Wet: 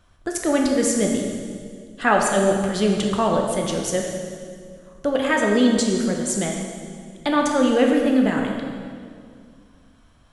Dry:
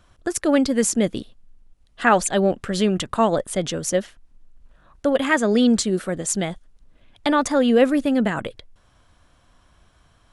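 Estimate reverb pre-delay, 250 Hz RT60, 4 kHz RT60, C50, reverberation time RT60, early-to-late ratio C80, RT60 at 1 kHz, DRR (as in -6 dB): 11 ms, 2.7 s, 1.8 s, 2.5 dB, 2.1 s, 4.0 dB, 1.9 s, 0.5 dB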